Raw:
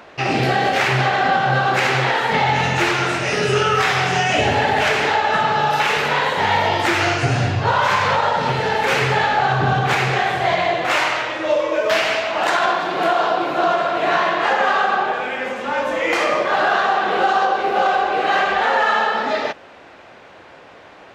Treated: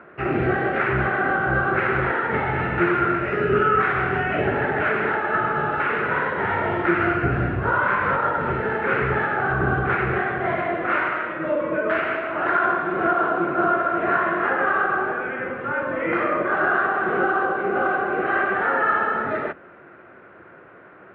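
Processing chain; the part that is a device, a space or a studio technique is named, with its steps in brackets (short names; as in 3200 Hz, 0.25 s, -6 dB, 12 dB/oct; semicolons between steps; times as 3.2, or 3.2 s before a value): sub-octave bass pedal (octaver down 1 oct, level 0 dB; speaker cabinet 82–2100 Hz, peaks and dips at 360 Hz +9 dB, 840 Hz -6 dB, 1400 Hz +9 dB); gain -5.5 dB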